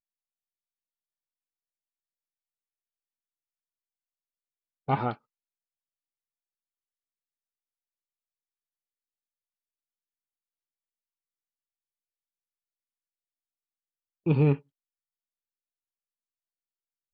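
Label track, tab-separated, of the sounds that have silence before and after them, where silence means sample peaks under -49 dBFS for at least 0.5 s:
4.880000	5.160000	sound
14.260000	14.600000	sound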